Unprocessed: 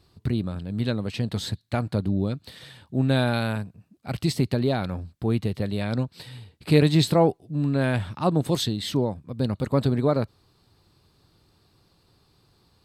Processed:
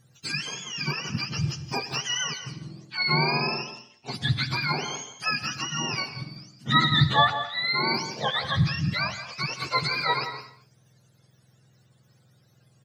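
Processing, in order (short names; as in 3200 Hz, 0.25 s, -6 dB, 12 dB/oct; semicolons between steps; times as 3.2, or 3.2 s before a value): spectrum mirrored in octaves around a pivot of 760 Hz; echo 0.17 s -13 dB; non-linear reverb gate 0.28 s flat, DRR 11.5 dB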